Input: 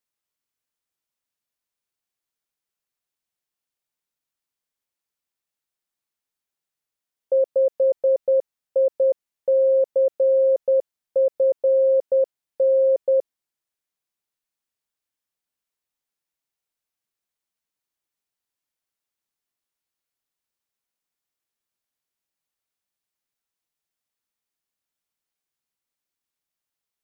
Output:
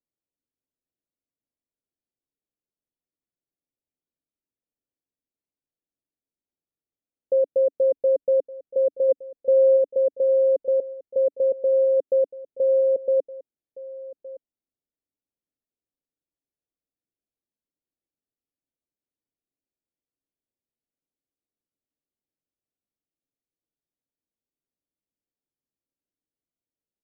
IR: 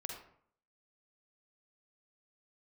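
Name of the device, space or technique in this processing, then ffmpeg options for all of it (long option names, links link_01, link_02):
under water: -filter_complex "[0:a]lowpass=frequency=600:width=0.5412,lowpass=frequency=600:width=1.3066,equalizer=frequency=280:width_type=o:width=0.41:gain=6,asplit=3[link_01][link_02][link_03];[link_01]afade=type=out:start_time=9.08:duration=0.02[link_04];[link_02]aecho=1:1:4:0.48,afade=type=in:start_time=9.08:duration=0.02,afade=type=out:start_time=9.76:duration=0.02[link_05];[link_03]afade=type=in:start_time=9.76:duration=0.02[link_06];[link_04][link_05][link_06]amix=inputs=3:normalize=0,asplit=2[link_07][link_08];[link_08]adelay=1166,volume=-18dB,highshelf=frequency=4000:gain=-26.2[link_09];[link_07][link_09]amix=inputs=2:normalize=0"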